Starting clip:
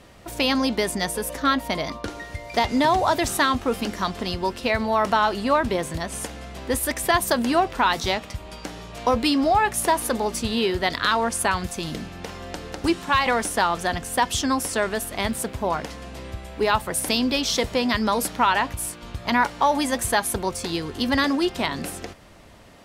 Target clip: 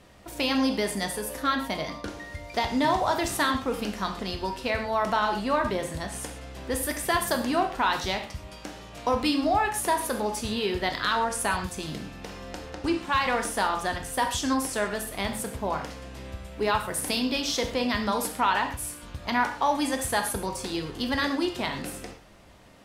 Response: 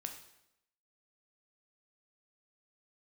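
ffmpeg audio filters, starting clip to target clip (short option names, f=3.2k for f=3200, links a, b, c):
-filter_complex "[0:a]asettb=1/sr,asplit=3[a][b][c];[a]atrim=end=12.654[d];[b]atrim=start=12.65:end=13.05,asetpts=PTS-STARTPTS,afade=t=in:d=0.004:c=qsin,afade=t=out:st=0.396:d=0.004:c=qsin,highshelf=f=8.5k:g=-11.5[e];[c]atrim=start=13.046[f];[d][e]acrossfade=d=0.004:c1=hsin:c2=qsin[g];[g][f]acrossfade=d=0.004:c1=qsin:c2=hsin[h];[1:a]atrim=start_sample=2205,afade=t=out:st=0.19:d=0.01,atrim=end_sample=8820[i];[h][i]afir=irnorm=-1:irlink=0,volume=-2dB"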